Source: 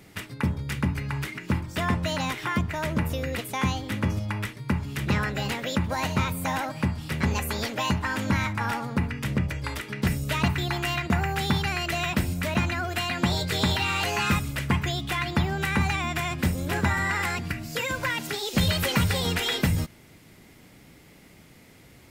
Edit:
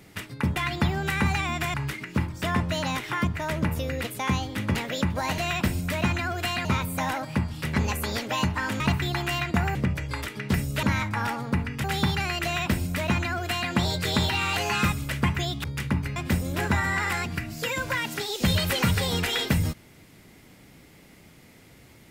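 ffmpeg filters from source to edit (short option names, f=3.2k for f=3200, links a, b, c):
-filter_complex "[0:a]asplit=12[a][b][c][d][e][f][g][h][i][j][k][l];[a]atrim=end=0.562[m];[b]atrim=start=15.108:end=16.292[n];[c]atrim=start=1.078:end=4.092[o];[d]atrim=start=5.488:end=6.122[p];[e]atrim=start=11.908:end=13.182[q];[f]atrim=start=6.118:end=8.272[r];[g]atrim=start=10.358:end=11.312[s];[h]atrim=start=9.278:end=10.362[t];[i]atrim=start=8.268:end=9.282[u];[j]atrim=start=11.308:end=15.112[v];[k]atrim=start=0.558:end=1.082[w];[l]atrim=start=16.288[x];[m][n]acrossfade=d=0.004:c1=hsin:c2=hsin[y];[y][o]acrossfade=d=0.004:c1=hsin:c2=hsin[z];[z][p]acrossfade=d=0.004:c1=hsin:c2=hsin[aa];[aa][q]acrossfade=d=0.004:c1=hsin:c2=hsin[ab];[ab][r]acrossfade=d=0.004:c1=hsin:c2=hsin[ac];[ac][s]acrossfade=d=0.004:c1=hsin:c2=hsin[ad];[ad][t]acrossfade=d=0.004:c1=hsin:c2=hsin[ae];[ae][u]acrossfade=d=0.004:c1=hsin:c2=hsin[af];[af][v]acrossfade=d=0.004:c1=hsin:c2=hsin[ag];[ag][w]acrossfade=d=0.004:c1=hsin:c2=hsin[ah];[ah][x]acrossfade=d=0.004:c1=hsin:c2=hsin"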